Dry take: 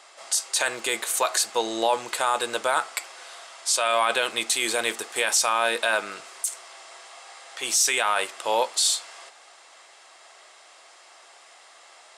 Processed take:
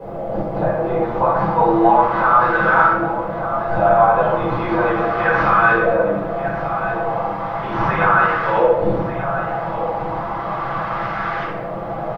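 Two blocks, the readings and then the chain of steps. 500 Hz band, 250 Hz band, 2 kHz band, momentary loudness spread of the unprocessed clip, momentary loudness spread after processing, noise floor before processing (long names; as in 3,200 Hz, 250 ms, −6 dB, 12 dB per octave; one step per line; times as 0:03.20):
+11.5 dB, +17.5 dB, +8.5 dB, 20 LU, 11 LU, −52 dBFS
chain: linear delta modulator 32 kbit/s, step −26 dBFS
parametric band 120 Hz +9.5 dB 1.8 octaves
comb filter 6 ms, depth 61%
dynamic equaliser 1,300 Hz, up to +4 dB, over −34 dBFS, Q 1.7
harmonic and percussive parts rebalanced percussive +4 dB
auto-filter low-pass saw up 0.35 Hz 500–1,600 Hz
in parallel at +1 dB: brickwall limiter −12 dBFS, peak gain reduction 13.5 dB
on the sum: bit reduction 10 bits
on a send: single-tap delay 1,190 ms −11.5 dB
on the sum: rectangular room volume 420 cubic metres, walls mixed, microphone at 5 metres
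level −15 dB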